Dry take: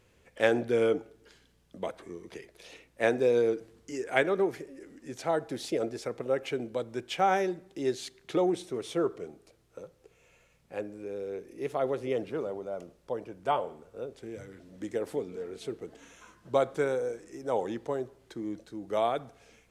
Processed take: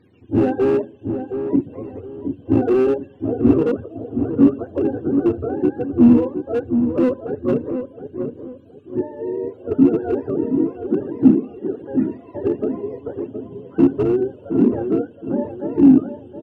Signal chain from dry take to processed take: spectrum mirrored in octaves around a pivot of 430 Hz; high shelf 5600 Hz -12 dB; in parallel at -1.5 dB: limiter -22 dBFS, peak gain reduction 9.5 dB; on the sum: tempo 1.2×; overloaded stage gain 21.5 dB; small resonant body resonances 260/2700 Hz, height 17 dB, ringing for 35 ms; on a send: darkening echo 0.72 s, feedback 35%, low-pass 890 Hz, level -7 dB; on the sum: gain +1.5 dB

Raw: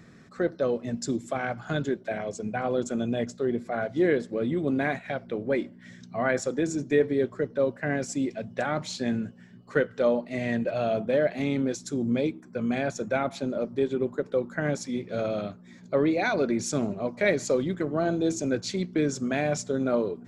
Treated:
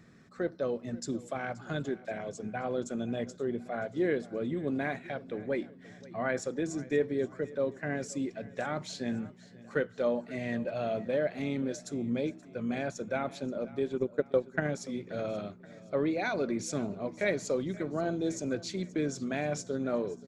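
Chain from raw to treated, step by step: 13.92–14.67 transient shaper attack +7 dB, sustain -9 dB; feedback echo 0.528 s, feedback 51%, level -20 dB; gain -6 dB

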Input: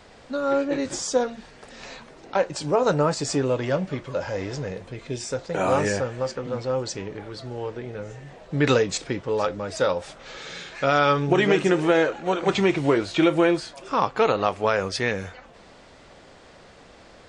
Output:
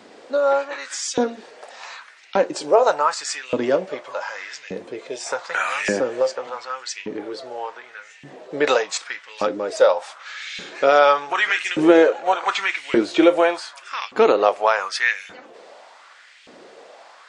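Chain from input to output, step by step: LFO high-pass saw up 0.85 Hz 230–2700 Hz; 5.26–6.5 three-band squash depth 70%; gain +2 dB

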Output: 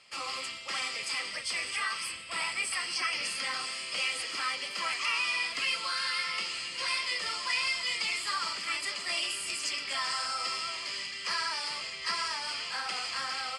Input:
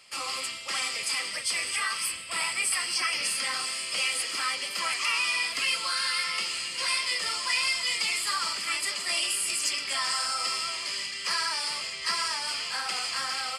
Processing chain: air absorption 58 m; gain -2 dB

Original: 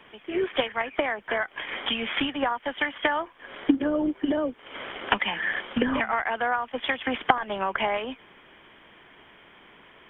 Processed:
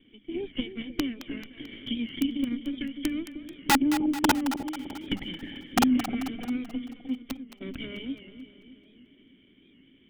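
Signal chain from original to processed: minimum comb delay 0.58 ms; vocal tract filter i; notches 50/100/150/200 Hz; wrapped overs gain 22 dB; 2.07–2.51 AM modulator 27 Hz, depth 30%; 6.84–7.61 gate -28 dBFS, range -17 dB; split-band echo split 630 Hz, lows 0.306 s, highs 0.219 s, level -10.5 dB; record warp 78 rpm, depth 100 cents; gain +7 dB

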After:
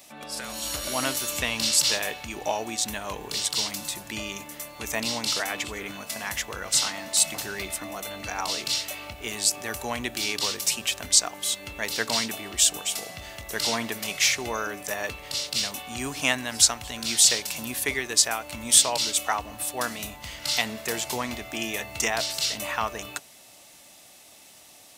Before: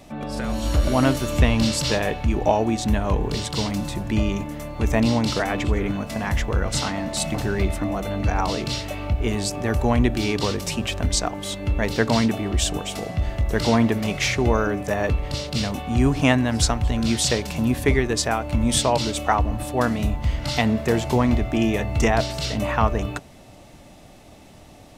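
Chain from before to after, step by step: tilt +4.5 dB/oct; gain -6 dB

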